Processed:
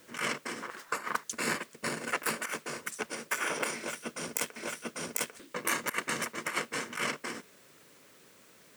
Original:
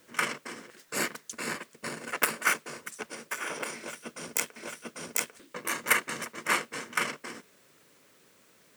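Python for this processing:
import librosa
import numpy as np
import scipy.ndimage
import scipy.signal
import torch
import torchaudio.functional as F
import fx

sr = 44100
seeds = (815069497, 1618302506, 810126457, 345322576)

y = fx.peak_eq(x, sr, hz=1100.0, db=14.5, octaves=1.3, at=(0.62, 1.24))
y = fx.over_compress(y, sr, threshold_db=-30.0, ratio=-0.5)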